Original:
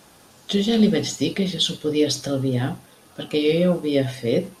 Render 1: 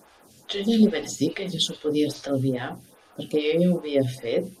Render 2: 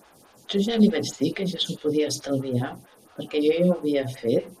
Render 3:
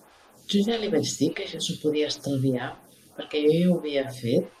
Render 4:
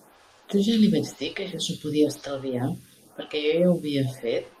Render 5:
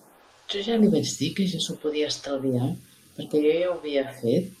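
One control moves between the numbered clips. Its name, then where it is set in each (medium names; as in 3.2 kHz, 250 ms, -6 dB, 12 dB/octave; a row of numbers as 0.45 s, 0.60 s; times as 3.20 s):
lamp-driven phase shifter, rate: 2.4 Hz, 4.6 Hz, 1.6 Hz, 0.97 Hz, 0.6 Hz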